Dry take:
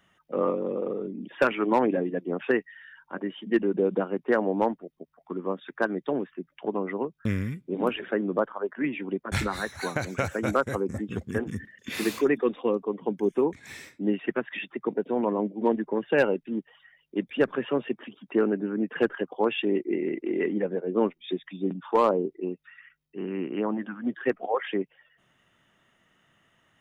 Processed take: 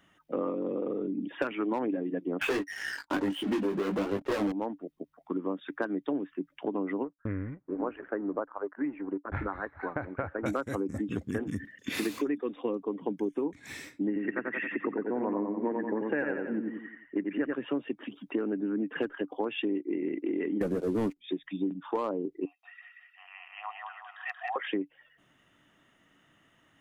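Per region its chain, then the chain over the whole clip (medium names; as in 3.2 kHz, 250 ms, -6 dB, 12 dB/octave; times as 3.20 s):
2.41–4.52 s: waveshaping leveller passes 5 + doubling 20 ms -3.5 dB + flange 1.1 Hz, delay 1.1 ms, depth 4.6 ms, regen -45%
7.04–10.46 s: companding laws mixed up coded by A + low-pass 1.6 kHz 24 dB/octave + peaking EQ 200 Hz -9 dB 1.7 oct
14.07–17.54 s: resonant high shelf 2.7 kHz -12.5 dB, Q 3 + feedback delay 89 ms, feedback 41%, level -4 dB
20.61–21.17 s: CVSD coder 64 kbps + waveshaping leveller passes 3 + bass shelf 210 Hz +12 dB
22.45–24.56 s: rippled Chebyshev high-pass 700 Hz, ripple 6 dB + comb 1.6 ms, depth 45% + feedback delay 182 ms, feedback 42%, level -3.5 dB
whole clip: peaking EQ 290 Hz +10.5 dB 0.24 oct; compression 6:1, threshold -28 dBFS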